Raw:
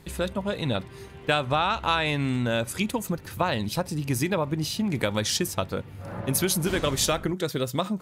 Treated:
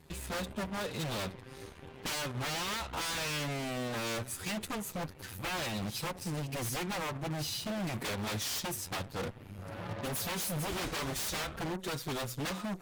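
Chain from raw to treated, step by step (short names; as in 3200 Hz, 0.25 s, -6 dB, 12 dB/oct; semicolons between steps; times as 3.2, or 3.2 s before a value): time stretch by phase-locked vocoder 1.6×; wavefolder -26 dBFS; added harmonics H 3 -19 dB, 8 -17 dB, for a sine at -26 dBFS; gain -4 dB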